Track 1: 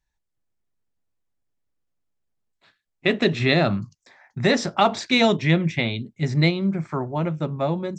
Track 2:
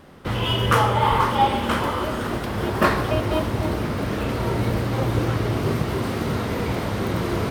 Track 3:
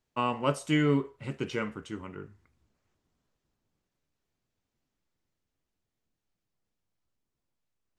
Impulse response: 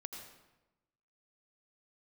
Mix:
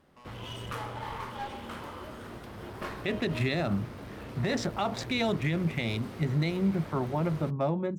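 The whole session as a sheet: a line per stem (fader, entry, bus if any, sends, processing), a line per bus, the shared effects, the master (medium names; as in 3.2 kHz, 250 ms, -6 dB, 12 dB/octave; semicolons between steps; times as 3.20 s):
-2.5 dB, 0.00 s, no send, local Wiener filter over 9 samples; compression, threshold -19 dBFS, peak gain reduction 7 dB
-16.5 dB, 0.00 s, no send, one-sided clip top -24 dBFS
-12.5 dB, 0.00 s, no send, peak limiter -22.5 dBFS, peak gain reduction 9.5 dB; saturation -39 dBFS, distortion -5 dB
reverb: none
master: peak limiter -19 dBFS, peak gain reduction 9 dB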